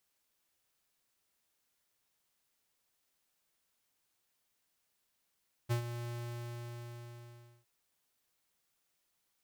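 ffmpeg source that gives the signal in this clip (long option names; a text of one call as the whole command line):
ffmpeg -f lavfi -i "aevalsrc='0.0316*(2*lt(mod(119*t,1),0.5)-1)':duration=1.96:sample_rate=44100,afade=type=in:duration=0.024,afade=type=out:start_time=0.024:duration=0.101:silence=0.299,afade=type=out:start_time=0.4:duration=1.56" out.wav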